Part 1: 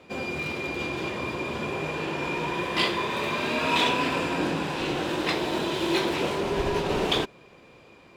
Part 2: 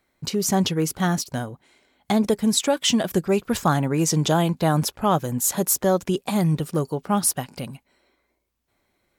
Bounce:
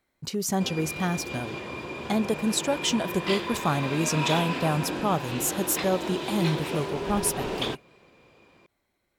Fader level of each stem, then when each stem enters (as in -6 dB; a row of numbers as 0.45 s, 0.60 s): -5.0 dB, -5.5 dB; 0.50 s, 0.00 s